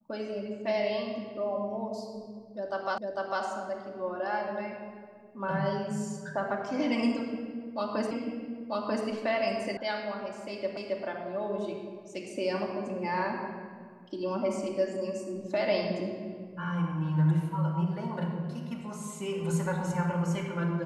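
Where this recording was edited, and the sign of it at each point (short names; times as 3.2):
2.98 repeat of the last 0.45 s
8.11 repeat of the last 0.94 s
9.77 sound cut off
10.77 repeat of the last 0.27 s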